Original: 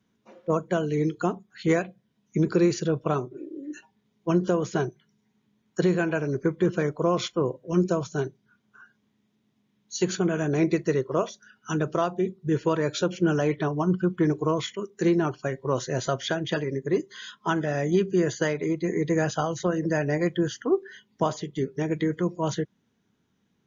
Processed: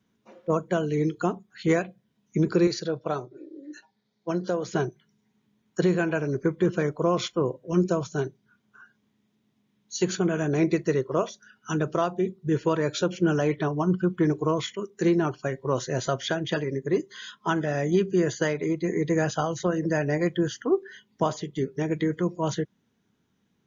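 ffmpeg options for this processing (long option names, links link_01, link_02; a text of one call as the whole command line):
ffmpeg -i in.wav -filter_complex "[0:a]asettb=1/sr,asplit=3[link_01][link_02][link_03];[link_01]atrim=end=2.674[link_04];[link_02]atrim=start=2.67:end=4.68,asetpts=PTS-STARTPTS,afade=type=in:duration=0.004:curve=qsin,afade=type=out:start_time=2.006:duration=0.004:curve=qsin,highpass=150,equalizer=frequency=160:width_type=q:width=4:gain=-6,equalizer=frequency=250:width_type=q:width=4:gain=-9,equalizer=frequency=380:width_type=q:width=4:gain=-6,equalizer=frequency=1100:width_type=q:width=4:gain=-6,equalizer=frequency=2800:width_type=q:width=4:gain=-9,equalizer=frequency=4300:width_type=q:width=4:gain=8,lowpass=frequency=6200:width=0.5412,lowpass=frequency=6200:width=1.3066[link_05];[link_03]atrim=start=4.676[link_06];[link_04][link_05]acrossfade=duration=0.004:curve1=hsin:curve2=qsin[link_07];[link_07][link_06]acrossfade=duration=0.004:curve1=qsin:curve2=hsin" out.wav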